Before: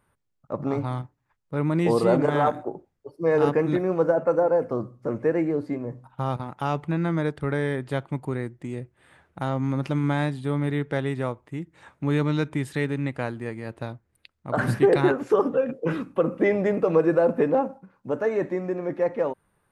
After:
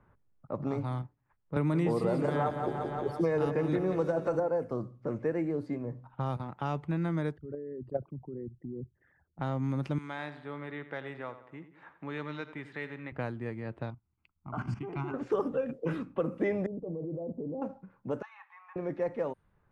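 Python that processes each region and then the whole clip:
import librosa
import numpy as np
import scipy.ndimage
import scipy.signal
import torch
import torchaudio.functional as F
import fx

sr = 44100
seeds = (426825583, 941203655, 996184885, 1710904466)

y = fx.chain(x, sr, fx.echo_feedback(ms=174, feedback_pct=48, wet_db=-10.5),
    fx.band_squash(depth_pct=100), at=(1.56, 4.4))
y = fx.chain(y, sr, fx.envelope_sharpen(power=3.0),
    fx.level_steps(step_db=12),
    fx.band_widen(depth_pct=70), at=(7.37, 9.39))
y = fx.chain(y, sr, fx.highpass(hz=1200.0, slope=6),
    fx.echo_feedback(ms=88, feedback_pct=46, wet_db=-13.5), at=(9.98, 13.12))
y = fx.chain(y, sr, fx.level_steps(step_db=13),
    fx.fixed_phaser(hz=2600.0, stages=8), at=(13.9, 15.14))
y = fx.chain(y, sr, fx.gaussian_blur(sigma=15.0),
    fx.level_steps(step_db=16), at=(16.66, 17.62))
y = fx.chain(y, sr, fx.cheby_ripple_highpass(hz=790.0, ripple_db=9),
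    fx.high_shelf(hz=4100.0, db=-6.0),
    fx.band_squash(depth_pct=40), at=(18.22, 18.76))
y = fx.env_lowpass(y, sr, base_hz=1600.0, full_db=-21.0)
y = fx.low_shelf(y, sr, hz=150.0, db=6.5)
y = fx.band_squash(y, sr, depth_pct=40)
y = y * librosa.db_to_amplitude(-8.5)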